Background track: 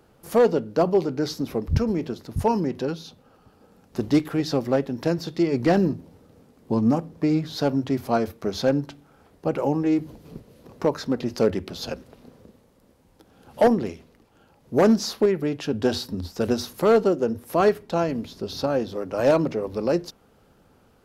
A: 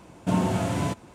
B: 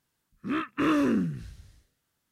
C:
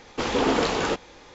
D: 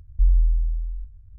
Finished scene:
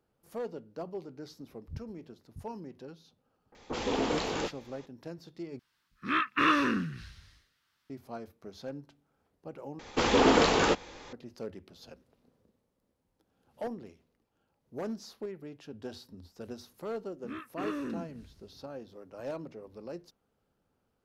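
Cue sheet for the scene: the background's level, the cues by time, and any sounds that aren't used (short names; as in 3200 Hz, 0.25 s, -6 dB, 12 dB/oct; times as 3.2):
background track -19.5 dB
3.52 add C -7.5 dB + bands offset in time lows, highs 30 ms, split 1400 Hz
5.59 replace with B -5.5 dB + band shelf 2300 Hz +11.5 dB 2.8 oct
9.79 replace with C
16.79 add B -12 dB
not used: A, D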